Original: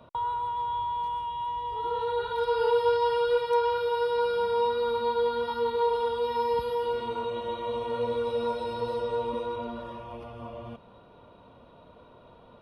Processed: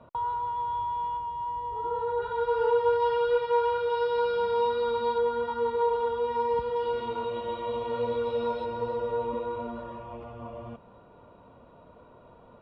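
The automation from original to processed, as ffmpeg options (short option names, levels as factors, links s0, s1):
-af "asetnsamples=n=441:p=0,asendcmd='1.17 lowpass f 1500;2.22 lowpass f 2100;3 lowpass f 2900;3.9 lowpass f 4200;5.18 lowpass f 2300;6.76 lowpass f 3800;8.65 lowpass f 2300',lowpass=2200"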